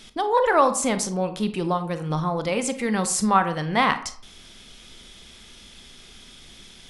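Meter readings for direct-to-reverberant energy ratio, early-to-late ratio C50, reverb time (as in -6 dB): 9.5 dB, 12.5 dB, 0.55 s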